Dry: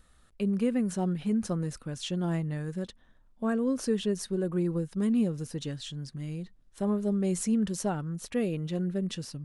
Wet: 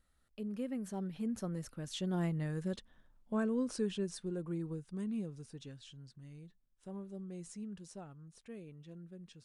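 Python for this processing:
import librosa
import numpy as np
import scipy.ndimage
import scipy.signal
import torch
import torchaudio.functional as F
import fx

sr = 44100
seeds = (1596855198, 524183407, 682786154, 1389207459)

y = fx.doppler_pass(x, sr, speed_mps=18, closest_m=15.0, pass_at_s=2.73)
y = y * librosa.db_to_amplitude(-3.0)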